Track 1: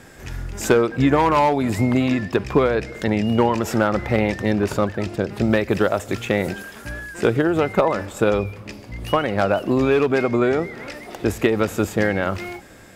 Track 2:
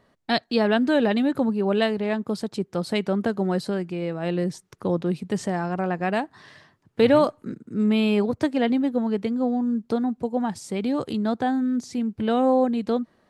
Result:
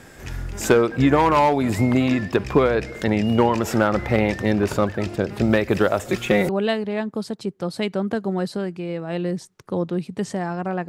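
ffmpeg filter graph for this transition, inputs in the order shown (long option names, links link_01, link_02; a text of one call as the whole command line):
ffmpeg -i cue0.wav -i cue1.wav -filter_complex "[0:a]asettb=1/sr,asplit=3[link_01][link_02][link_03];[link_01]atrim=end=6.044[link_04];[link_02]atrim=start=6.04:end=6.49,asetpts=PTS-STARTPTS,afade=type=in:duration=0.004:curve=qsin,afade=type=out:start_time=0.446:duration=0.004:curve=qsin,aecho=1:1:5.5:0.66,atrim=end_sample=19845[link_05];[link_03]atrim=start=6.486[link_06];[link_04][link_05]acrossfade=duration=0.004:curve1=hsin:curve2=qsin[link_07];[link_07][link_06]acrossfade=duration=0.004:curve1=qsin:curve2=hsin,apad=whole_dur=10.88,atrim=end=10.88,atrim=end=6.492[link_08];[1:a]atrim=start=1.618:end=6.01[link_09];[link_08][link_09]acrossfade=duration=0.004:curve1=hsin:curve2=hsin" out.wav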